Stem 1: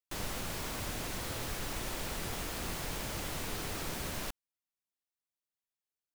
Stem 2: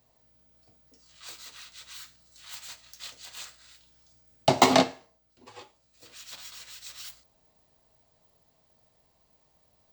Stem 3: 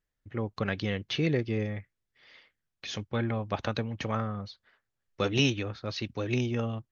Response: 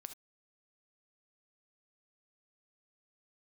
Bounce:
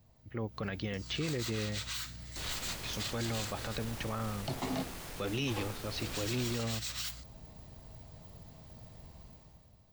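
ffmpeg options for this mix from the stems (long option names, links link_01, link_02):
-filter_complex "[0:a]aeval=exprs='0.0668*(cos(1*acos(clip(val(0)/0.0668,-1,1)))-cos(1*PI/2))+0.00944*(cos(5*acos(clip(val(0)/0.0668,-1,1)))-cos(5*PI/2))':channel_layout=same,adelay=2250,volume=-9.5dB[link_01];[1:a]dynaudnorm=framelen=100:gausssize=13:maxgain=13dB,bass=frequency=250:gain=13,treble=frequency=4000:gain=-2,acompressor=threshold=-34dB:ratio=3,volume=-2.5dB[link_02];[2:a]volume=-3.5dB[link_03];[link_01][link_02][link_03]amix=inputs=3:normalize=0,alimiter=level_in=1.5dB:limit=-24dB:level=0:latency=1:release=11,volume=-1.5dB"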